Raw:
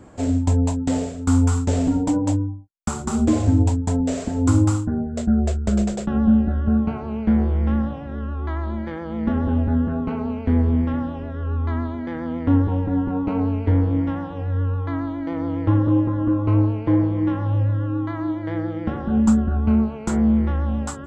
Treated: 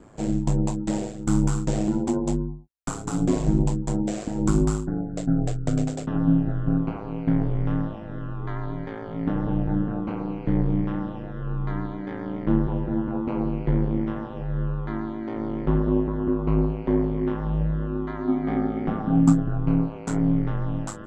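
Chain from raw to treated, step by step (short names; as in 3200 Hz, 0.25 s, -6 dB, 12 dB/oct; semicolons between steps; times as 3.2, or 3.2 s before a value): ring modulator 53 Hz; 18.27–19.32 small resonant body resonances 220/760/1200/2200 Hz, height 14 dB -> 9 dB; gain -1 dB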